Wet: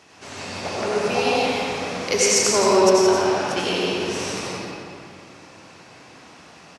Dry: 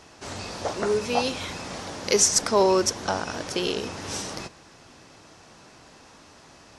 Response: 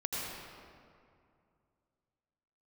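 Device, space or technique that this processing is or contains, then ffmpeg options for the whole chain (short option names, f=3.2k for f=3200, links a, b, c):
PA in a hall: -filter_complex "[0:a]highpass=110,equalizer=f=2.4k:t=o:w=0.8:g=5,aecho=1:1:171:0.447[a];[1:a]atrim=start_sample=2205[b];[a][b]afir=irnorm=-1:irlink=0,volume=-1dB"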